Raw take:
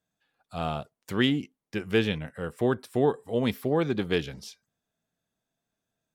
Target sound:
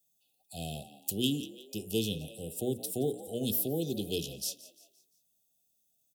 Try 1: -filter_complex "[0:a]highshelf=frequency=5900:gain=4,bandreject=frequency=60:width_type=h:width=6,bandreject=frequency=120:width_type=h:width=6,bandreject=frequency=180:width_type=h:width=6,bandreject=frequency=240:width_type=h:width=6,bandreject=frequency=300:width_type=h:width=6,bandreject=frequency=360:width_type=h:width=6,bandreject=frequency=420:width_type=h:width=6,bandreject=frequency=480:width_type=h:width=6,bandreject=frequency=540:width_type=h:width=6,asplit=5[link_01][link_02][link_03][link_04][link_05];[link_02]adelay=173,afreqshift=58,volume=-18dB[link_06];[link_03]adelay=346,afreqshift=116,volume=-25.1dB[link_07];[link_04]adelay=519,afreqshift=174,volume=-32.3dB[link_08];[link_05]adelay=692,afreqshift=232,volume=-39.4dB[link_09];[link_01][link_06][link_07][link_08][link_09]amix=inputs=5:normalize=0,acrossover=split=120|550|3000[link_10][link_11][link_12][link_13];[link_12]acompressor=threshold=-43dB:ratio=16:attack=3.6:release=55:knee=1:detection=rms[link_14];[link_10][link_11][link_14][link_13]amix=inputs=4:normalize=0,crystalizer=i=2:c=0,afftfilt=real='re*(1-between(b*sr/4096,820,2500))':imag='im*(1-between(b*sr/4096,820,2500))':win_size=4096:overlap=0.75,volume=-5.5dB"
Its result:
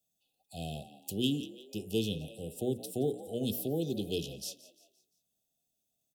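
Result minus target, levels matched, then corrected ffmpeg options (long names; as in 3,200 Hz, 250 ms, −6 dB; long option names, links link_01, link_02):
8,000 Hz band −5.0 dB
-filter_complex "[0:a]highshelf=frequency=5900:gain=13.5,bandreject=frequency=60:width_type=h:width=6,bandreject=frequency=120:width_type=h:width=6,bandreject=frequency=180:width_type=h:width=6,bandreject=frequency=240:width_type=h:width=6,bandreject=frequency=300:width_type=h:width=6,bandreject=frequency=360:width_type=h:width=6,bandreject=frequency=420:width_type=h:width=6,bandreject=frequency=480:width_type=h:width=6,bandreject=frequency=540:width_type=h:width=6,asplit=5[link_01][link_02][link_03][link_04][link_05];[link_02]adelay=173,afreqshift=58,volume=-18dB[link_06];[link_03]adelay=346,afreqshift=116,volume=-25.1dB[link_07];[link_04]adelay=519,afreqshift=174,volume=-32.3dB[link_08];[link_05]adelay=692,afreqshift=232,volume=-39.4dB[link_09];[link_01][link_06][link_07][link_08][link_09]amix=inputs=5:normalize=0,acrossover=split=120|550|3000[link_10][link_11][link_12][link_13];[link_12]acompressor=threshold=-43dB:ratio=16:attack=3.6:release=55:knee=1:detection=rms[link_14];[link_10][link_11][link_14][link_13]amix=inputs=4:normalize=0,crystalizer=i=2:c=0,afftfilt=real='re*(1-between(b*sr/4096,820,2500))':imag='im*(1-between(b*sr/4096,820,2500))':win_size=4096:overlap=0.75,volume=-5.5dB"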